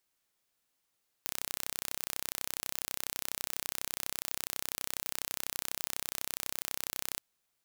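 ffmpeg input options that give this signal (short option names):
-f lavfi -i "aevalsrc='0.422*eq(mod(n,1374),0)':d=5.95:s=44100"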